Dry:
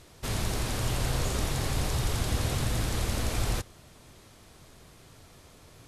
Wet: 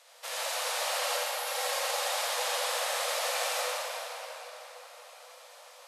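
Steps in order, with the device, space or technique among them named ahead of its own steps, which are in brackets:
Chebyshev high-pass filter 490 Hz, order 8
0:01.01–0:01.68: comb filter 3.7 ms, depth 53%
0:01.17–0:01.47: time-frequency box erased 260–9,800 Hz
cathedral (convolution reverb RT60 4.5 s, pre-delay 35 ms, DRR −6.5 dB)
level −1.5 dB

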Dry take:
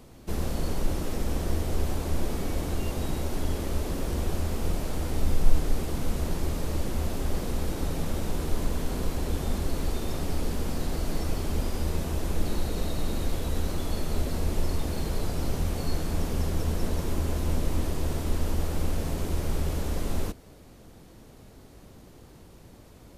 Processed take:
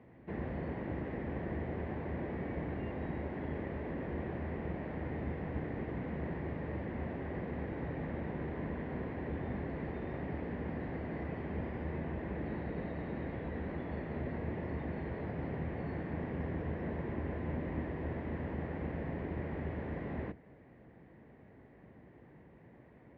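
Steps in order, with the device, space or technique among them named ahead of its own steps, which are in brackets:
sub-octave bass pedal (sub-octave generator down 2 octaves; loudspeaker in its box 74–2,100 Hz, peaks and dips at 88 Hz −8 dB, 1,300 Hz −8 dB, 1,900 Hz +9 dB)
level −5.5 dB

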